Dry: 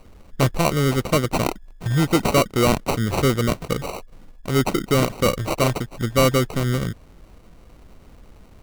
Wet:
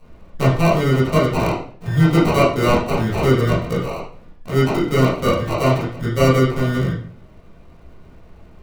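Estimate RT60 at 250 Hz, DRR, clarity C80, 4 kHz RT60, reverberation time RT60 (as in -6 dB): 0.60 s, -10.0 dB, 8.5 dB, 0.40 s, 0.50 s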